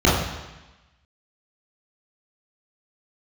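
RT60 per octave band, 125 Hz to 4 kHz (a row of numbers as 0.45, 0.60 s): 1.1, 1.1, 1.0, 1.1, 1.2, 1.1 s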